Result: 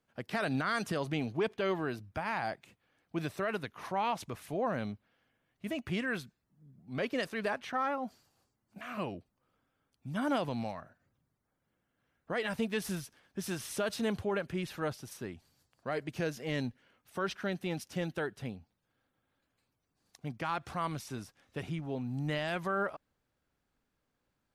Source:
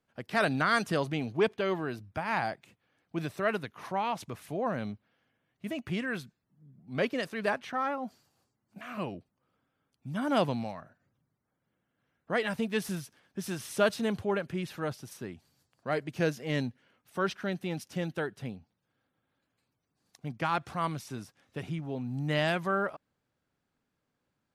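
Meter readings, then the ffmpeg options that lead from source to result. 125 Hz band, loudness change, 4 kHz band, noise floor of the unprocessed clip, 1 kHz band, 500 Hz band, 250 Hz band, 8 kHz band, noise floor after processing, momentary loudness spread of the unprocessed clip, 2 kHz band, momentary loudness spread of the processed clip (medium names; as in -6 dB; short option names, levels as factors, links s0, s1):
-3.0 dB, -3.5 dB, -3.0 dB, -82 dBFS, -3.5 dB, -3.5 dB, -2.5 dB, -0.5 dB, -82 dBFS, 15 LU, -4.0 dB, 12 LU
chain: -af "alimiter=limit=0.075:level=0:latency=1:release=86,asubboost=boost=3:cutoff=66"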